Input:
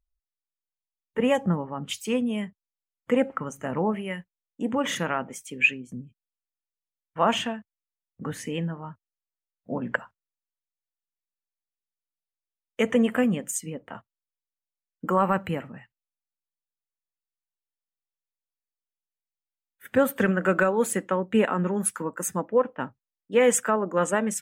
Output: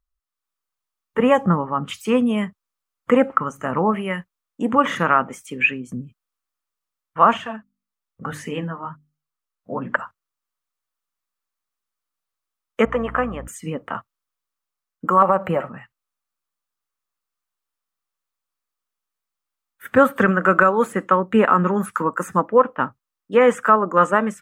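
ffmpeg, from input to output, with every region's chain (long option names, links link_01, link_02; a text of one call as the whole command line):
ffmpeg -i in.wav -filter_complex "[0:a]asettb=1/sr,asplit=3[link_01][link_02][link_03];[link_01]atrim=end=7.374[link_04];[link_02]atrim=start=7.37:end=9.99,asetpts=PTS-STARTPTS,afade=type=in:duration=0.004:curve=qsin,afade=type=out:start_time=2.616:duration=0.004:curve=qsin,flanger=delay=1.3:depth=9.2:regen=28:speed=1.1:shape=sinusoidal,bandreject=frequency=50:width_type=h:width=6,bandreject=frequency=100:width_type=h:width=6,bandreject=frequency=150:width_type=h:width=6,bandreject=frequency=200:width_type=h:width=6,bandreject=frequency=250:width_type=h:width=6,bandreject=frequency=300:width_type=h:width=6,bandreject=frequency=350:width_type=h:width=6[link_05];[link_03]atrim=start=9.986[link_06];[link_04][link_05]acrossfade=duration=0.004:curve1=hsin:curve2=qsin[link_07];[link_07][link_06]acrossfade=duration=0.004:curve1=qsin:curve2=hsin,asettb=1/sr,asplit=3[link_08][link_09][link_10];[link_08]atrim=end=12.854[link_11];[link_09]atrim=start=12.85:end=13.48,asetpts=PTS-STARTPTS,afade=type=in:duration=0.004:curve=qsin,afade=type=out:start_time=0.626:duration=0.004:curve=qsin,bandpass=frequency=950:width_type=q:width=1.1,aeval=exprs='val(0)+0.00891*(sin(2*PI*60*n/s)+sin(2*PI*2*60*n/s)/2+sin(2*PI*3*60*n/s)/3+sin(2*PI*4*60*n/s)/4+sin(2*PI*5*60*n/s)/5)':channel_layout=same[link_12];[link_10]atrim=start=13.476[link_13];[link_11][link_12]acrossfade=duration=0.004:curve1=hsin:curve2=qsin[link_14];[link_14][link_13]acrossfade=duration=0.004:curve1=qsin:curve2=hsin,asettb=1/sr,asplit=3[link_15][link_16][link_17];[link_15]atrim=end=15.224[link_18];[link_16]atrim=start=15.22:end=15.69,asetpts=PTS-STARTPTS,afade=type=in:duration=0.004:curve=qsin,afade=type=out:start_time=0.466:duration=0.004:curve=qsin,equalizer=frequency=610:width_type=o:width=1.3:gain=13,aecho=1:1:5.4:0.47,atrim=end_sample=20727,acompressor=threshold=-18dB:ratio=3:attack=3.2:release=140:knee=1:detection=peak[link_19];[link_17]atrim=start=15.686[link_20];[link_18][link_19]acrossfade=duration=0.004:curve1=hsin:curve2=qsin[link_21];[link_21][link_20]acrossfade=duration=0.004:curve1=qsin:curve2=hsin,acrossover=split=2500[link_22][link_23];[link_23]acompressor=threshold=-44dB:ratio=4:attack=1:release=60[link_24];[link_22][link_24]amix=inputs=2:normalize=0,equalizer=frequency=1200:width_type=o:width=0.57:gain=11,dynaudnorm=framelen=240:gausssize=3:maxgain=7.5dB" out.wav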